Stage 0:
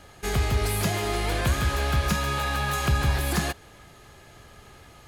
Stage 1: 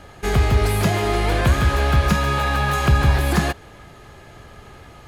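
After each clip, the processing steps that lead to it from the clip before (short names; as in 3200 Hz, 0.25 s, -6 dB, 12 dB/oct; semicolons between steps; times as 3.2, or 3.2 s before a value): high shelf 3400 Hz -8.5 dB; gain +7.5 dB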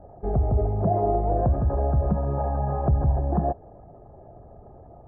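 formant sharpening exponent 1.5; ladder low-pass 780 Hz, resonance 60%; gain +5 dB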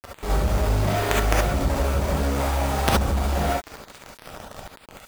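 companded quantiser 2-bit; non-linear reverb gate 90 ms rising, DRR -3.5 dB; gain -2.5 dB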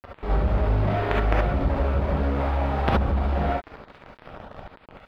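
air absorption 390 m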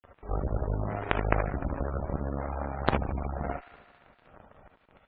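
added harmonics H 3 -20 dB, 4 -21 dB, 7 -23 dB, 8 -32 dB, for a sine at -2 dBFS; thin delay 75 ms, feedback 76%, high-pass 1500 Hz, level -11 dB; spectral gate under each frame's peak -25 dB strong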